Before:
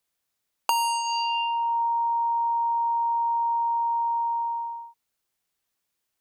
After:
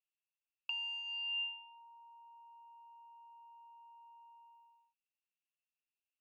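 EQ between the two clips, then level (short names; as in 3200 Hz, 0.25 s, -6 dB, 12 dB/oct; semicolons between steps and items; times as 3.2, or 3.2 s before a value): band-pass 2700 Hz, Q 18; air absorption 100 m; 0.0 dB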